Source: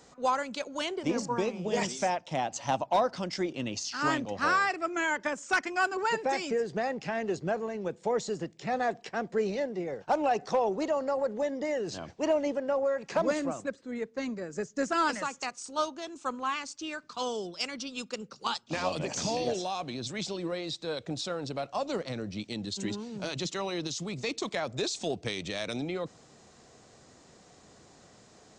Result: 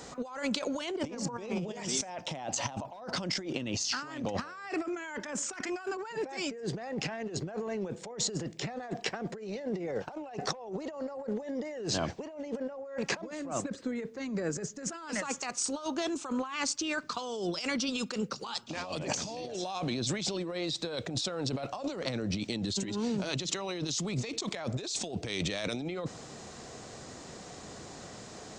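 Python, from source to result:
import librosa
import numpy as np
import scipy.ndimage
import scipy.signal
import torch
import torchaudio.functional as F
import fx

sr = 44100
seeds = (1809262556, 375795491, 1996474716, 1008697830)

y = fx.over_compress(x, sr, threshold_db=-40.0, ratio=-1.0)
y = F.gain(torch.from_numpy(y), 3.5).numpy()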